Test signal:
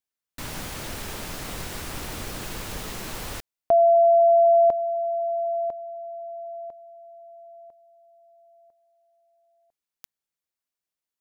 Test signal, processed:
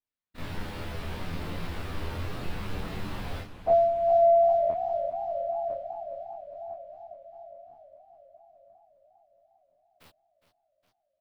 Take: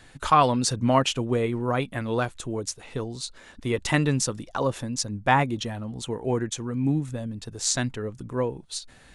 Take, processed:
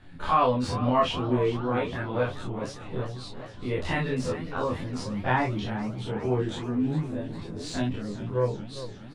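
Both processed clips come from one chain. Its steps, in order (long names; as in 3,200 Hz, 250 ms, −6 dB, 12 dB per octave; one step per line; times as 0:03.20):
every bin's largest magnitude spread in time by 60 ms
bass and treble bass +3 dB, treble +14 dB
soft clipping −0.5 dBFS
multi-voice chorus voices 2, 0.35 Hz, delay 11 ms, depth 1.1 ms
high-frequency loss of the air 450 metres
double-tracking delay 24 ms −2.5 dB
feedback echo with a swinging delay time 407 ms, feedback 68%, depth 160 cents, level −13.5 dB
level −3.5 dB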